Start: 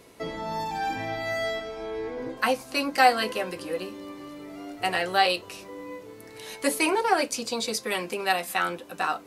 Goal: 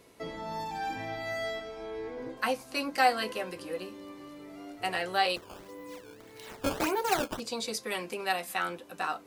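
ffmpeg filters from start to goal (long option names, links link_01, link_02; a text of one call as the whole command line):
ffmpeg -i in.wav -filter_complex "[0:a]asettb=1/sr,asplit=3[link_01][link_02][link_03];[link_01]atrim=end=5.364[link_04];[link_02]atrim=start=5.36:end=7.4,asetpts=PTS-STARTPTS,afade=type=in:duration=0.004:curve=qsin,afade=type=out:start_time=2.036:duration=0.004:curve=qsin,acrusher=samples=13:mix=1:aa=0.000001:lfo=1:lforange=20.8:lforate=1.7[link_05];[link_03]atrim=start=7.396[link_06];[link_04][link_05]acrossfade=duration=0.004:curve1=hsin:curve2=qsin[link_07];[link_07][link_06]acrossfade=duration=0.004:curve1=qsin:curve2=hsin,volume=-5.5dB" out.wav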